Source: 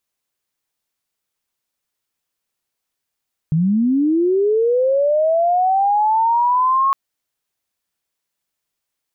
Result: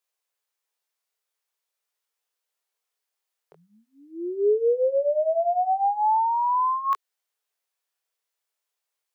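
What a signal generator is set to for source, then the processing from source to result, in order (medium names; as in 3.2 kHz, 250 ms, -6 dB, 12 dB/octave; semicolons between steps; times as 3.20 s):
sweep linear 150 Hz -> 1.1 kHz -13 dBFS -> -12.5 dBFS 3.41 s
elliptic high-pass 410 Hz, stop band 40 dB; chorus 0.43 Hz, delay 19 ms, depth 4.8 ms; dynamic bell 780 Hz, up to -4 dB, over -30 dBFS, Q 0.95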